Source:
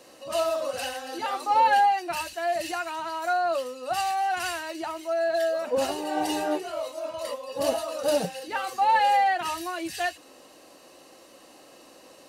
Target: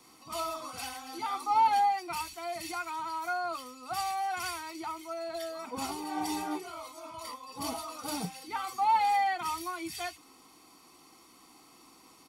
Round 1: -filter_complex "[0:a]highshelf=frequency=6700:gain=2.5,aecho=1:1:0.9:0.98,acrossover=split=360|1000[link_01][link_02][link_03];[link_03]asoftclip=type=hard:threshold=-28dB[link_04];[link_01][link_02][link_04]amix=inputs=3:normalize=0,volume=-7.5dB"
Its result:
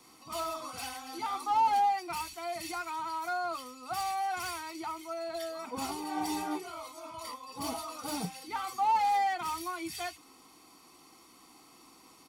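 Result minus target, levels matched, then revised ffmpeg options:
hard clipping: distortion +27 dB
-filter_complex "[0:a]highshelf=frequency=6700:gain=2.5,aecho=1:1:0.9:0.98,acrossover=split=360|1000[link_01][link_02][link_03];[link_03]asoftclip=type=hard:threshold=-18.5dB[link_04];[link_01][link_02][link_04]amix=inputs=3:normalize=0,volume=-7.5dB"

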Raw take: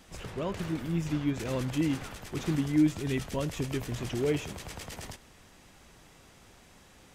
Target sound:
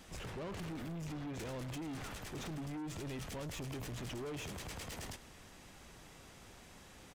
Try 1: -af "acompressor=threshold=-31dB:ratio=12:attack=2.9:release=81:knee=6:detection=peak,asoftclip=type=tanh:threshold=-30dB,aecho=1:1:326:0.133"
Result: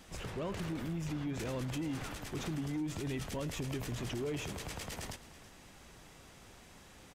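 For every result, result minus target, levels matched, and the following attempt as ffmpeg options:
echo-to-direct +12 dB; soft clipping: distortion −11 dB
-af "acompressor=threshold=-31dB:ratio=12:attack=2.9:release=81:knee=6:detection=peak,asoftclip=type=tanh:threshold=-30dB,aecho=1:1:326:0.0335"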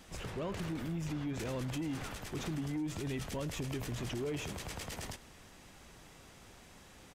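soft clipping: distortion −11 dB
-af "acompressor=threshold=-31dB:ratio=12:attack=2.9:release=81:knee=6:detection=peak,asoftclip=type=tanh:threshold=-40dB,aecho=1:1:326:0.0335"

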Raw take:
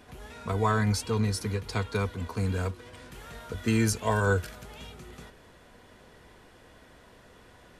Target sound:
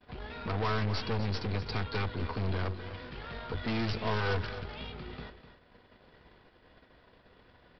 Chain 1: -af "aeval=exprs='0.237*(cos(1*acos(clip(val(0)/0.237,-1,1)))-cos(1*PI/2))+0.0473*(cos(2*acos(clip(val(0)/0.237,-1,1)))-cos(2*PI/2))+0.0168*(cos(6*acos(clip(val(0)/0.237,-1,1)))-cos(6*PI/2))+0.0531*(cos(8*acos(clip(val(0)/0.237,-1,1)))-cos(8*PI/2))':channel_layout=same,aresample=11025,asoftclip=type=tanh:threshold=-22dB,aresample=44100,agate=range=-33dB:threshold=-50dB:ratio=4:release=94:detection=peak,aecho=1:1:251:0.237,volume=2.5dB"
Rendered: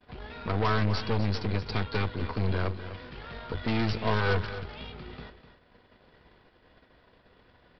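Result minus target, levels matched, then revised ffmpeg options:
soft clipping: distortion −6 dB
-af "aeval=exprs='0.237*(cos(1*acos(clip(val(0)/0.237,-1,1)))-cos(1*PI/2))+0.0473*(cos(2*acos(clip(val(0)/0.237,-1,1)))-cos(2*PI/2))+0.0168*(cos(6*acos(clip(val(0)/0.237,-1,1)))-cos(6*PI/2))+0.0531*(cos(8*acos(clip(val(0)/0.237,-1,1)))-cos(8*PI/2))':channel_layout=same,aresample=11025,asoftclip=type=tanh:threshold=-28.5dB,aresample=44100,agate=range=-33dB:threshold=-50dB:ratio=4:release=94:detection=peak,aecho=1:1:251:0.237,volume=2.5dB"

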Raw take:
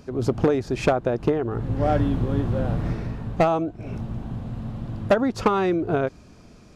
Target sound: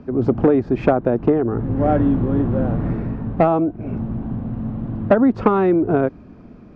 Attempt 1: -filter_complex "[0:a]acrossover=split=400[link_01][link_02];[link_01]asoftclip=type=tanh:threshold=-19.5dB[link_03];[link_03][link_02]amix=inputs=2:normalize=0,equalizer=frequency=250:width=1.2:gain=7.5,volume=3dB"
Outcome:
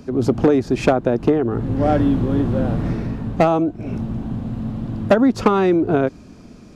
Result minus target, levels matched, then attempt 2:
2,000 Hz band +3.0 dB
-filter_complex "[0:a]acrossover=split=400[link_01][link_02];[link_01]asoftclip=type=tanh:threshold=-19.5dB[link_03];[link_03][link_02]amix=inputs=2:normalize=0,lowpass=1800,equalizer=frequency=250:width=1.2:gain=7.5,volume=3dB"

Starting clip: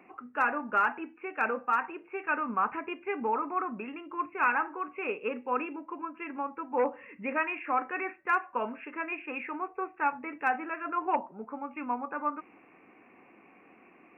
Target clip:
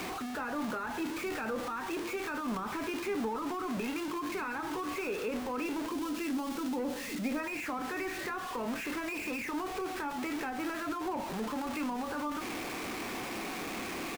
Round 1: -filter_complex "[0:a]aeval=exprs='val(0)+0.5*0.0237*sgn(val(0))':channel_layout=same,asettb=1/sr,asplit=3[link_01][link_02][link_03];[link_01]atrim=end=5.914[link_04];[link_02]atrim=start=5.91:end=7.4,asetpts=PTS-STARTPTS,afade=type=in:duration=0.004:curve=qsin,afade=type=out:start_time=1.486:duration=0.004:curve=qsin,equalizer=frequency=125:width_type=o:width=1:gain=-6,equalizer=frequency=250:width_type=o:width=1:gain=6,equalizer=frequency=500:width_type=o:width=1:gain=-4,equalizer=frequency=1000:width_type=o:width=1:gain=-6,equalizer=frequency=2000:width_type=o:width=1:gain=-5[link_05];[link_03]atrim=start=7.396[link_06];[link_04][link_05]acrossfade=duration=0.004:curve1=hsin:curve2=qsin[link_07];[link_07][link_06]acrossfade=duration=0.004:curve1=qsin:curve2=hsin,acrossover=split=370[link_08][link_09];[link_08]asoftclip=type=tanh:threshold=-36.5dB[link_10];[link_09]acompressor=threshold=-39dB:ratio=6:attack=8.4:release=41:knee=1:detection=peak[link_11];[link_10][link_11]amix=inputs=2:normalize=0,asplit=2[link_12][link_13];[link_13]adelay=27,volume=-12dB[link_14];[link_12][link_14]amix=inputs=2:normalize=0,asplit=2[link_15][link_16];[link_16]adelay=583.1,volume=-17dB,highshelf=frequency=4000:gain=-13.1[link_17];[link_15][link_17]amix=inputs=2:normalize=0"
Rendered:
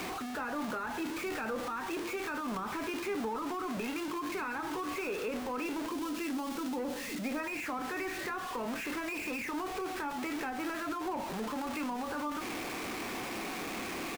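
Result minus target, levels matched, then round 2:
soft clipping: distortion +7 dB
-filter_complex "[0:a]aeval=exprs='val(0)+0.5*0.0237*sgn(val(0))':channel_layout=same,asettb=1/sr,asplit=3[link_01][link_02][link_03];[link_01]atrim=end=5.914[link_04];[link_02]atrim=start=5.91:end=7.4,asetpts=PTS-STARTPTS,afade=type=in:duration=0.004:curve=qsin,afade=type=out:start_time=1.486:duration=0.004:curve=qsin,equalizer=frequency=125:width_type=o:width=1:gain=-6,equalizer=frequency=250:width_type=o:width=1:gain=6,equalizer=frequency=500:width_type=o:width=1:gain=-4,equalizer=frequency=1000:width_type=o:width=1:gain=-6,equalizer=frequency=2000:width_type=o:width=1:gain=-5[link_05];[link_03]atrim=start=7.396[link_06];[link_04][link_05]acrossfade=duration=0.004:curve1=hsin:curve2=qsin[link_07];[link_07][link_06]acrossfade=duration=0.004:curve1=qsin:curve2=hsin,acrossover=split=370[link_08][link_09];[link_08]asoftclip=type=tanh:threshold=-30.5dB[link_10];[link_09]acompressor=threshold=-39dB:ratio=6:attack=8.4:release=41:knee=1:detection=peak[link_11];[link_10][link_11]amix=inputs=2:normalize=0,asplit=2[link_12][link_13];[link_13]adelay=27,volume=-12dB[link_14];[link_12][link_14]amix=inputs=2:normalize=0,asplit=2[link_15][link_16];[link_16]adelay=583.1,volume=-17dB,highshelf=frequency=4000:gain=-13.1[link_17];[link_15][link_17]amix=inputs=2:normalize=0"

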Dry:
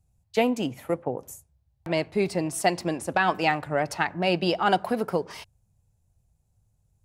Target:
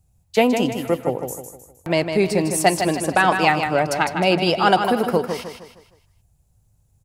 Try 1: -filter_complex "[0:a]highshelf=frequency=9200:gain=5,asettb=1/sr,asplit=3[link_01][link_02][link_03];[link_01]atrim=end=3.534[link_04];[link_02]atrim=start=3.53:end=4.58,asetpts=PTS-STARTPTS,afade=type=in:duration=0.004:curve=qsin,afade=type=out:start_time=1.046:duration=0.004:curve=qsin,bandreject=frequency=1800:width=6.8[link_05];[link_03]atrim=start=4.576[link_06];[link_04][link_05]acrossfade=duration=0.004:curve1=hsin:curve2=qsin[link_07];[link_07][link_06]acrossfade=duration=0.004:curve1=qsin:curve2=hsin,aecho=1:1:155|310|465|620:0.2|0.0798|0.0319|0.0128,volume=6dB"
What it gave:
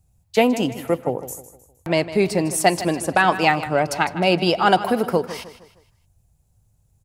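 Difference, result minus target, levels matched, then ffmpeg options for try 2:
echo-to-direct −7 dB
-filter_complex "[0:a]highshelf=frequency=9200:gain=5,asettb=1/sr,asplit=3[link_01][link_02][link_03];[link_01]atrim=end=3.534[link_04];[link_02]atrim=start=3.53:end=4.58,asetpts=PTS-STARTPTS,afade=type=in:duration=0.004:curve=qsin,afade=type=out:start_time=1.046:duration=0.004:curve=qsin,bandreject=frequency=1800:width=6.8[link_05];[link_03]atrim=start=4.576[link_06];[link_04][link_05]acrossfade=duration=0.004:curve1=hsin:curve2=qsin[link_07];[link_07][link_06]acrossfade=duration=0.004:curve1=qsin:curve2=hsin,aecho=1:1:155|310|465|620|775:0.447|0.179|0.0715|0.0286|0.0114,volume=6dB"

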